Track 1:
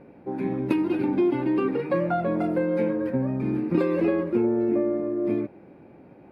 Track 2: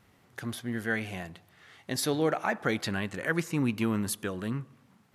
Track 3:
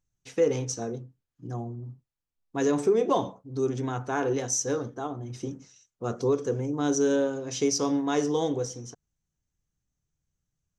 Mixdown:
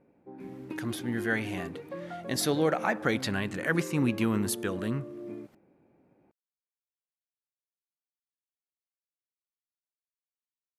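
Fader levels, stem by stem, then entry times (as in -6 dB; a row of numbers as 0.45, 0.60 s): -15.5 dB, +1.0 dB, off; 0.00 s, 0.40 s, off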